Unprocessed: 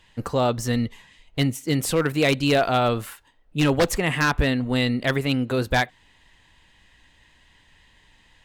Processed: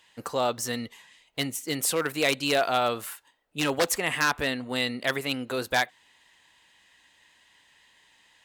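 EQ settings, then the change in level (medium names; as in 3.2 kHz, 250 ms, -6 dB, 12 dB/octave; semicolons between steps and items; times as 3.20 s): high-pass 920 Hz 6 dB/octave; tilt shelf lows +4 dB, about 1.5 kHz; treble shelf 4.4 kHz +10 dB; -2.0 dB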